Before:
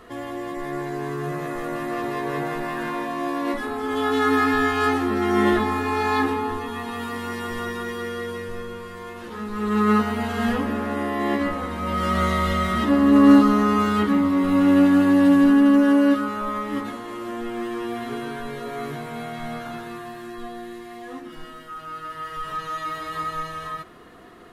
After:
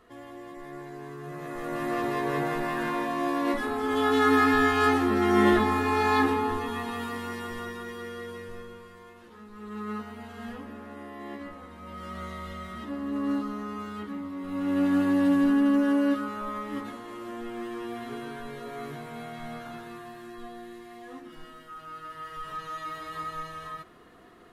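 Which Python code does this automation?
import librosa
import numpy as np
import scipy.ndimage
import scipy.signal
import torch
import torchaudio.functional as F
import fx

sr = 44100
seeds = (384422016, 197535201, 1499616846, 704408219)

y = fx.gain(x, sr, db=fx.line((1.23, -12.0), (1.87, -1.5), (6.72, -1.5), (7.8, -8.5), (8.53, -8.5), (9.47, -16.5), (14.38, -16.5), (14.94, -7.0)))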